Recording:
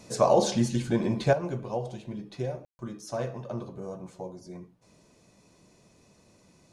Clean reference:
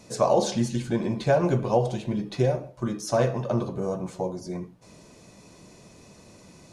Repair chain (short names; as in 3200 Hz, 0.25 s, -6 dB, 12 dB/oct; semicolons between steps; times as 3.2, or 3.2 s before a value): room tone fill 2.65–2.79; gain 0 dB, from 1.33 s +9.5 dB